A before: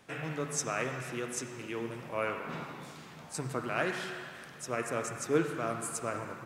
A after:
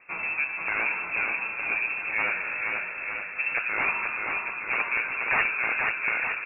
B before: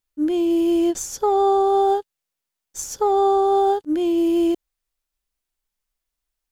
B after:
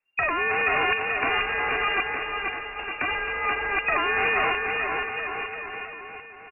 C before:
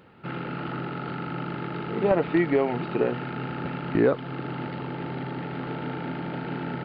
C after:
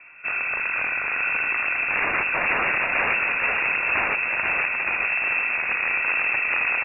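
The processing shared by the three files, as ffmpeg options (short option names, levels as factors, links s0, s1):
-filter_complex "[0:a]acrossover=split=150|1000[s0][s1][s2];[s0]asoftclip=type=tanh:threshold=0.0188[s3];[s2]flanger=delay=16.5:depth=2.9:speed=0.62[s4];[s3][s1][s4]amix=inputs=3:normalize=0,aeval=exprs='(mod(16.8*val(0)+1,2)-1)/16.8':c=same,aecho=1:1:480|912|1301|1651|1966:0.631|0.398|0.251|0.158|0.1,lowpass=f=2400:t=q:w=0.5098,lowpass=f=2400:t=q:w=0.6013,lowpass=f=2400:t=q:w=0.9,lowpass=f=2400:t=q:w=2.563,afreqshift=-2800,volume=2.37"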